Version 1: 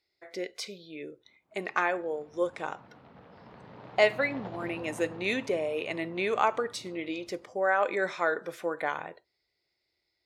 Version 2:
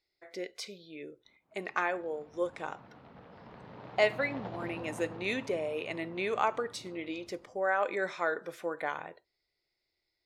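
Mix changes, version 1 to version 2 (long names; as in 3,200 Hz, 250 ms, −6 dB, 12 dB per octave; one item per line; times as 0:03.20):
speech −3.5 dB
master: remove high-pass filter 49 Hz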